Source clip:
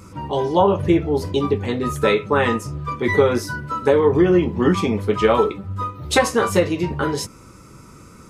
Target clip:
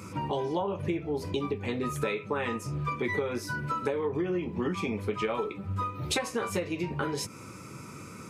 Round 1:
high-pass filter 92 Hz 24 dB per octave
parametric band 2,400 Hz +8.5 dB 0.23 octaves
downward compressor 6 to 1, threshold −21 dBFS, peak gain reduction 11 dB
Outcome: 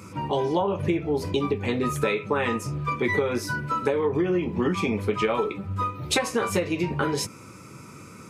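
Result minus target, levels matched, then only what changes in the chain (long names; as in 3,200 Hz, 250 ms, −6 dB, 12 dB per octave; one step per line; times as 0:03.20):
downward compressor: peak gain reduction −6 dB
change: downward compressor 6 to 1, threshold −28.5 dBFS, peak gain reduction 17 dB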